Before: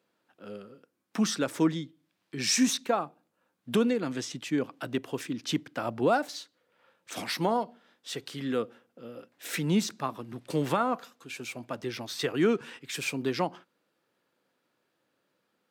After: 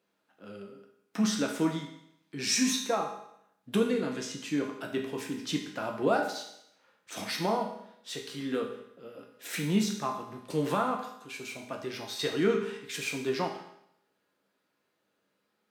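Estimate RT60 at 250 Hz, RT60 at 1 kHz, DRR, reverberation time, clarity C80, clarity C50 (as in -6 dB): 0.75 s, 0.75 s, 0.5 dB, 0.75 s, 9.0 dB, 6.0 dB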